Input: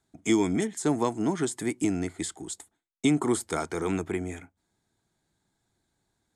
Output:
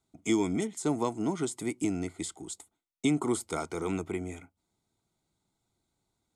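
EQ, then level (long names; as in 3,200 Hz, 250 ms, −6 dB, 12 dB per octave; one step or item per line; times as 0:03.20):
Butterworth band-reject 1,700 Hz, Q 4.4
−3.5 dB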